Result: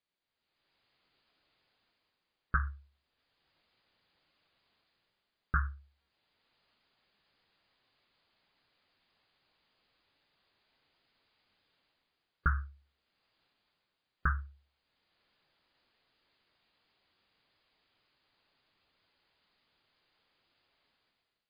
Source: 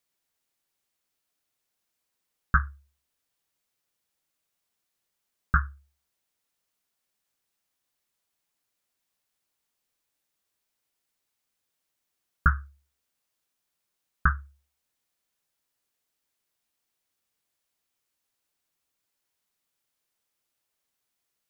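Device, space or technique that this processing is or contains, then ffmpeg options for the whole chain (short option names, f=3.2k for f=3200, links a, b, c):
low-bitrate web radio: -af "dynaudnorm=f=170:g=7:m=16dB,alimiter=limit=-12.5dB:level=0:latency=1:release=107,volume=-4.5dB" -ar 11025 -c:a libmp3lame -b:a 24k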